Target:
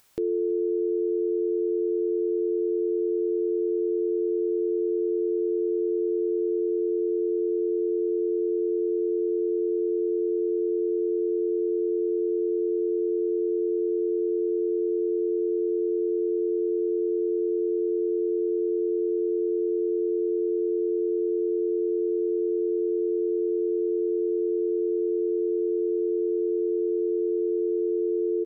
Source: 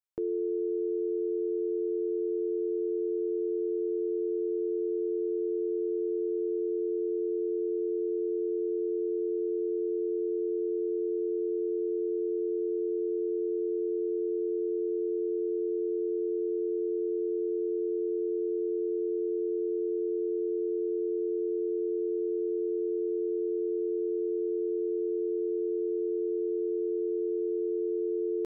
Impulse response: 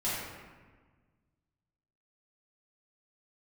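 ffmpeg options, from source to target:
-filter_complex "[0:a]acompressor=mode=upward:threshold=-46dB:ratio=2.5,asplit=2[link_01][link_02];[link_02]aecho=0:1:326:0.0631[link_03];[link_01][link_03]amix=inputs=2:normalize=0,volume=5dB"

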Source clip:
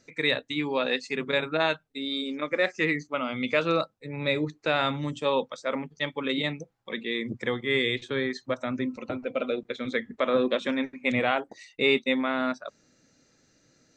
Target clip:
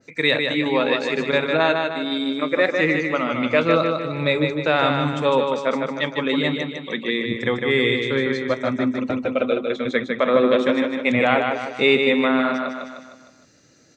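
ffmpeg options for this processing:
ffmpeg -i in.wav -af "highpass=58,aecho=1:1:153|306|459|612|765|918:0.596|0.286|0.137|0.0659|0.0316|0.0152,adynamicequalizer=threshold=0.0112:dfrequency=2300:dqfactor=0.7:tfrequency=2300:tqfactor=0.7:attack=5:release=100:ratio=0.375:range=2.5:mode=cutabove:tftype=highshelf,volume=6.5dB" out.wav

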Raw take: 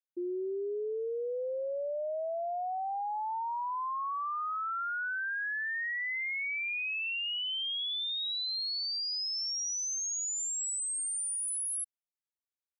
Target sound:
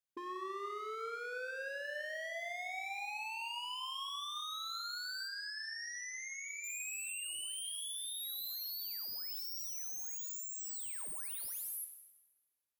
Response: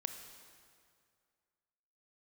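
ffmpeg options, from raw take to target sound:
-filter_complex "[0:a]aeval=exprs='0.0133*(abs(mod(val(0)/0.0133+3,4)-2)-1)':channel_layout=same,asettb=1/sr,asplit=3[link_01][link_02][link_03];[link_01]atrim=end=5.284[link_04];[link_02]atrim=start=5.28:end=6.64,asetpts=PTS-STARTPTS,afade=type=in:duration=0.004:curve=qsin,afade=type=out:start_time=1.356:duration=0.004:curve=qsin,highpass=370,lowpass=5400[link_05];[link_03]atrim=start=6.636[link_06];[link_04][link_05]acrossfade=duration=0.004:curve1=hsin:curve2=qsin[link_07];[link_07][link_06]acrossfade=duration=0.004:curve1=qsin:curve2=hsin[link_08];[1:a]atrim=start_sample=2205,asetrate=70560,aresample=44100[link_09];[link_08][link_09]afir=irnorm=-1:irlink=0,volume=6.5dB"

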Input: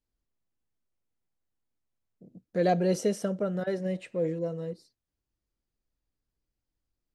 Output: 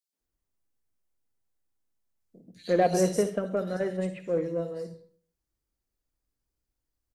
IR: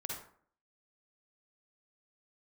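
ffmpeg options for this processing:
-filter_complex "[0:a]acrossover=split=160|3200[link_01][link_02][link_03];[link_02]adelay=130[link_04];[link_01]adelay=200[link_05];[link_05][link_04][link_03]amix=inputs=3:normalize=0,asplit=2[link_06][link_07];[1:a]atrim=start_sample=2205,highshelf=frequency=4000:gain=10[link_08];[link_07][link_08]afir=irnorm=-1:irlink=0,volume=-6dB[link_09];[link_06][link_09]amix=inputs=2:normalize=0,aeval=exprs='0.282*(cos(1*acos(clip(val(0)/0.282,-1,1)))-cos(1*PI/2))+0.00794*(cos(7*acos(clip(val(0)/0.282,-1,1)))-cos(7*PI/2))':channel_layout=same"

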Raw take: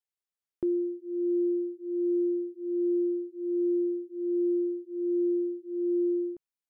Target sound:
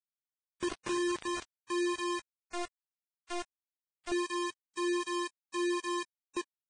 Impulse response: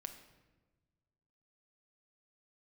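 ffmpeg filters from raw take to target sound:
-filter_complex "[0:a]asplit=2[link_01][link_02];[link_02]adelay=14,volume=-9dB[link_03];[link_01][link_03]amix=inputs=2:normalize=0,asplit=2[link_04][link_05];[link_05]adelay=340,highpass=300,lowpass=3400,asoftclip=type=hard:threshold=-30.5dB,volume=-26dB[link_06];[link_04][link_06]amix=inputs=2:normalize=0,acompressor=threshold=-39dB:ratio=2,aemphasis=mode=production:type=50fm[link_07];[1:a]atrim=start_sample=2205,asetrate=23814,aresample=44100[link_08];[link_07][link_08]afir=irnorm=-1:irlink=0,aeval=exprs='0.0447*(cos(1*acos(clip(val(0)/0.0447,-1,1)))-cos(1*PI/2))+0.000355*(cos(3*acos(clip(val(0)/0.0447,-1,1)))-cos(3*PI/2))+0.00224*(cos(5*acos(clip(val(0)/0.0447,-1,1)))-cos(5*PI/2))':channel_layout=same,adynamicequalizer=threshold=0.00447:dfrequency=370:dqfactor=4.6:tfrequency=370:tqfactor=4.6:attack=5:release=100:ratio=0.375:range=2:mode=boostabove:tftype=bell,bandreject=frequency=349.1:width_type=h:width=4,bandreject=frequency=698.2:width_type=h:width=4,bandreject=frequency=1047.3:width_type=h:width=4,bandreject=frequency=1396.4:width_type=h:width=4,bandreject=frequency=1745.5:width_type=h:width=4,bandreject=frequency=2094.6:width_type=h:width=4,bandreject=frequency=2443.7:width_type=h:width=4,bandreject=frequency=2792.8:width_type=h:width=4,bandreject=frequency=3141.9:width_type=h:width=4,bandreject=frequency=3491:width_type=h:width=4,bandreject=frequency=3840.1:width_type=h:width=4,bandreject=frequency=4189.2:width_type=h:width=4,bandreject=frequency=4538.3:width_type=h:width=4,bandreject=frequency=4887.4:width_type=h:width=4,bandreject=frequency=5236.5:width_type=h:width=4,bandreject=frequency=5585.6:width_type=h:width=4,bandreject=frequency=5934.7:width_type=h:width=4,bandreject=frequency=6283.8:width_type=h:width=4,bandreject=frequency=6632.9:width_type=h:width=4,asettb=1/sr,asplit=3[link_09][link_10][link_11];[link_09]atrim=end=2.354[link_12];[link_10]atrim=start=2.35:end=4.12,asetpts=PTS-STARTPTS,afade=type=in:duration=0.004:curve=qsin,afade=type=out:start_time=1.766:duration=0.004:curve=qsin,aeval=exprs='(tanh(100*val(0)+0.45)-tanh(0.45))/100':channel_layout=same[link_13];[link_11]atrim=start=4.116[link_14];[link_12][link_13]acrossfade=duration=0.004:curve1=hsin:curve2=qsin[link_15];[link_15][link_14]acrossfade=duration=0.004:curve1=qsin:curve2=hsin,dynaudnorm=framelen=120:gausssize=13:maxgain=8dB,acrusher=bits=4:mix=0:aa=0.000001,volume=-4.5dB" -ar 22050 -c:a libvorbis -b:a 16k

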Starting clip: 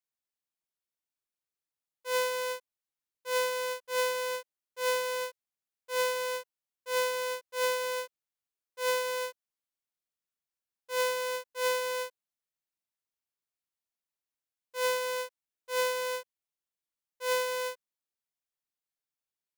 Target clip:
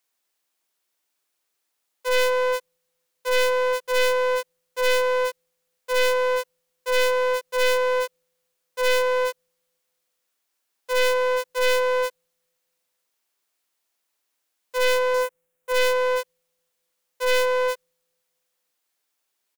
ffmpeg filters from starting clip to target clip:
ffmpeg -i in.wav -filter_complex "[0:a]asettb=1/sr,asplit=3[link_01][link_02][link_03];[link_01]atrim=end=15.144[link_04];[link_02]atrim=start=15.14:end=15.72,asetpts=PTS-STARTPTS,afade=type=in:duration=0.004:curve=qsin,afade=type=out:start_time=0.576:duration=0.004:curve=qsin,equalizer=frequency=4600:width_type=o:width=1.1:gain=-10.5[link_05];[link_03]atrim=start=15.716[link_06];[link_04][link_05]acrossfade=duration=0.004:curve1=hsin:curve2=qsin[link_07];[link_07][link_06]acrossfade=duration=0.004:curve1=qsin:curve2=hsin,acrossover=split=250[link_08][link_09];[link_08]aecho=1:1:511|1022:0.075|0.024[link_10];[link_09]aeval=exprs='0.178*sin(PI/2*3.98*val(0)/0.178)':channel_layout=same[link_11];[link_10][link_11]amix=inputs=2:normalize=0" out.wav

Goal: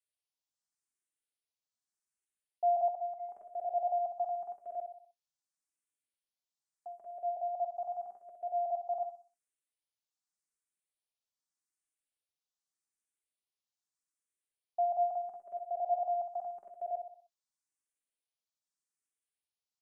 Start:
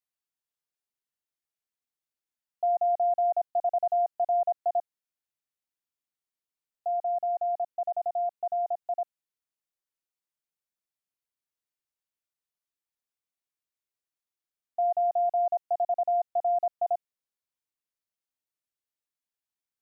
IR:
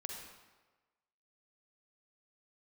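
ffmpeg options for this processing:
-filter_complex "[0:a]aemphasis=mode=production:type=50fm,asettb=1/sr,asplit=3[link_01][link_02][link_03];[link_01]atrim=end=2.884[link_04];[link_02]atrim=start=2.88:end=3.29,asetpts=PTS-STARTPTS,afade=type=in:duration=0.004:curve=qsin,afade=type=out:start_time=0.406:duration=0.004:curve=qsin,agate=range=-33dB:threshold=-20dB:ratio=3:detection=peak[link_05];[link_03]atrim=start=3.286[link_06];[link_04][link_05]acrossfade=duration=0.004:curve1=hsin:curve2=qsin[link_07];[link_07][link_06]acrossfade=duration=0.004:curve1=qsin:curve2=hsin,flanger=delay=3.4:depth=8.2:regen=71:speed=0.17:shape=sinusoidal,asplit=2[link_08][link_09];[link_09]aecho=0:1:62|124|186|248|310:0.422|0.181|0.078|0.0335|0.0144[link_10];[link_08][link_10]amix=inputs=2:normalize=0,aresample=22050,aresample=44100,asplit=2[link_11][link_12];[link_12]afreqshift=0.83[link_13];[link_11][link_13]amix=inputs=2:normalize=1"

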